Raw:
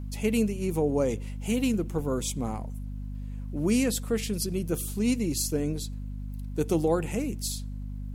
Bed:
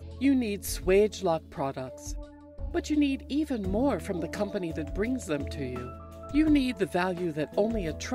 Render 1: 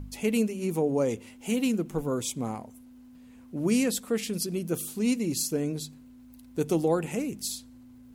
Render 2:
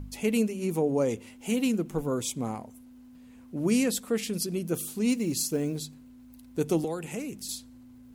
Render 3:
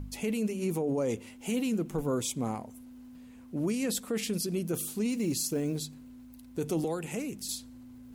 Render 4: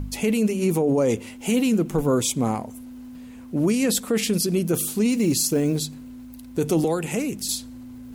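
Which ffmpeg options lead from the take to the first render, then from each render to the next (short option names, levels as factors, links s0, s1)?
-af "bandreject=f=50:t=h:w=4,bandreject=f=100:t=h:w=4,bandreject=f=150:t=h:w=4,bandreject=f=200:t=h:w=4"
-filter_complex "[0:a]asettb=1/sr,asplit=3[s0][s1][s2];[s0]atrim=end=5.104[s3];[s1]atrim=start=5.1:end=5.82,asetpts=PTS-STARTPTS,afade=t=in:d=0.004:c=qsin,afade=t=out:st=0.716:d=0.004:c=qsin,acrusher=bits=8:mode=log:mix=0:aa=0.000001[s4];[s2]atrim=start=5.816[s5];[s3][s4]acrossfade=d=0.004:c1=hsin:c2=qsin[s6];[s6][s5]acrossfade=d=0.004:c1=qsin:c2=hsin,asettb=1/sr,asplit=3[s7][s8][s9];[s7]atrim=end=6.844[s10];[s8]atrim=start=6.84:end=7.49,asetpts=PTS-STARTPTS,afade=t=in:d=0.004:c=qsin,afade=t=out:st=0.646:d=0.004:c=qsin,acrossover=split=430|1000|2500[s11][s12][s13][s14];[s11]acompressor=threshold=0.0158:ratio=3[s15];[s12]acompressor=threshold=0.01:ratio=3[s16];[s13]acompressor=threshold=0.00447:ratio=3[s17];[s14]acompressor=threshold=0.01:ratio=3[s18];[s15][s16][s17][s18]amix=inputs=4:normalize=0[s19];[s9]atrim=start=7.486[s20];[s10][s19]acrossfade=d=0.004:c1=hsin:c2=qsin[s21];[s21][s20]acrossfade=d=0.004:c1=qsin:c2=hsin"
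-af "alimiter=limit=0.075:level=0:latency=1:release=10,areverse,acompressor=mode=upward:threshold=0.00562:ratio=2.5,areverse"
-af "volume=2.99"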